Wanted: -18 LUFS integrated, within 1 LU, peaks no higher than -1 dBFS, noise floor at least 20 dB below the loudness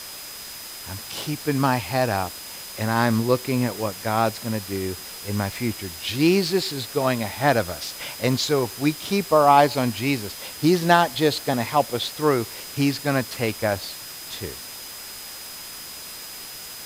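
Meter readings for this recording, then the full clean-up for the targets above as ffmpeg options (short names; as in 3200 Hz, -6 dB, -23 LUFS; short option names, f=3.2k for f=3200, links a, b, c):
steady tone 5000 Hz; tone level -41 dBFS; noise floor -38 dBFS; noise floor target -43 dBFS; loudness -23.0 LUFS; peak -2.5 dBFS; loudness target -18.0 LUFS
-> -af "bandreject=f=5k:w=30"
-af "afftdn=nr=6:nf=-38"
-af "volume=5dB,alimiter=limit=-1dB:level=0:latency=1"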